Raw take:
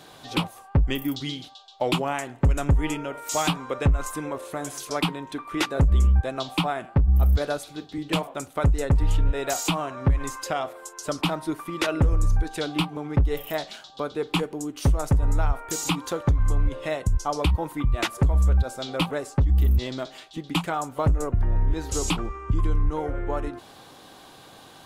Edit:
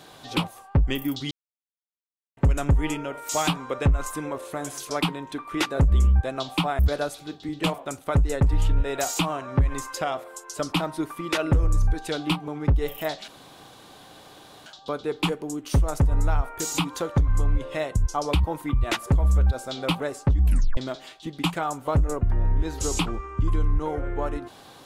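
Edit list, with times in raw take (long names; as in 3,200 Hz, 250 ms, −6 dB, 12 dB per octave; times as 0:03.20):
0:01.31–0:02.37: silence
0:06.79–0:07.28: remove
0:13.77: splice in room tone 1.38 s
0:19.55: tape stop 0.33 s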